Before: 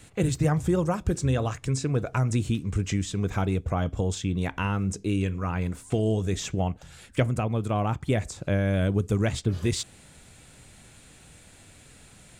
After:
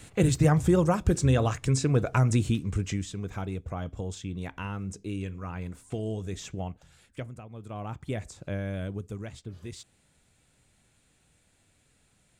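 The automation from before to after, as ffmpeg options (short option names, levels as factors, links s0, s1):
-af "volume=4.47,afade=t=out:st=2.23:d=0.99:silence=0.316228,afade=t=out:st=6.63:d=0.84:silence=0.281838,afade=t=in:st=7.47:d=0.58:silence=0.281838,afade=t=out:st=8.6:d=0.69:silence=0.446684"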